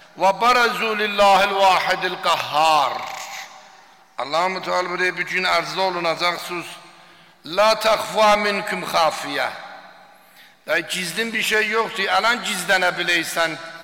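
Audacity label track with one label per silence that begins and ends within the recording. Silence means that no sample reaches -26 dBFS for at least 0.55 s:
3.450000	4.190000	silence
6.730000	7.460000	silence
9.640000	10.680000	silence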